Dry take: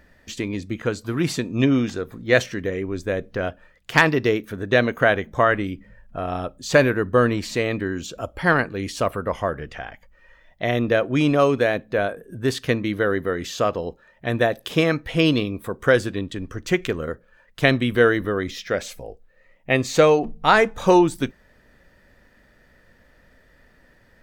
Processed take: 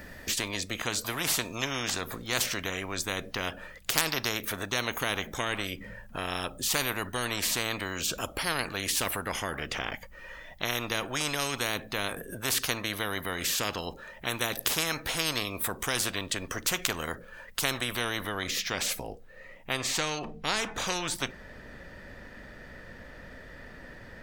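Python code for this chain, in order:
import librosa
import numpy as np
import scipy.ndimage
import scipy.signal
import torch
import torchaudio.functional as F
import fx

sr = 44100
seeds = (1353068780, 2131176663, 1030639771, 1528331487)

y = fx.high_shelf(x, sr, hz=7700.0, db=fx.steps((0.0, 9.0), (17.84, 2.5), (19.75, -8.5)))
y = fx.spectral_comp(y, sr, ratio=4.0)
y = y * 10.0 ** (-2.0 / 20.0)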